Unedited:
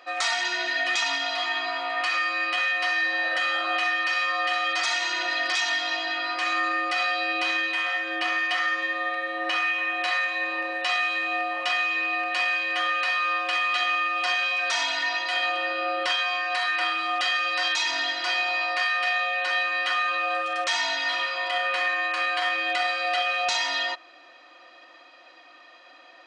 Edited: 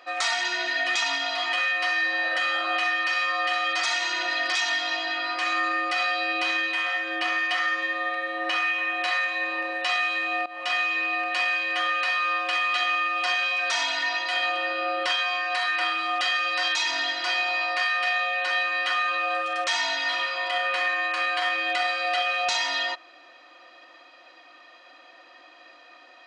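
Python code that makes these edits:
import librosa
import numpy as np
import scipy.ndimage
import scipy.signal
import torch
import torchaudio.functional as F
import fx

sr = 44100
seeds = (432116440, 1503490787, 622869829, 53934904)

y = fx.edit(x, sr, fx.cut(start_s=1.53, length_s=1.0),
    fx.fade_in_from(start_s=11.46, length_s=0.28, floor_db=-18.0), tone=tone)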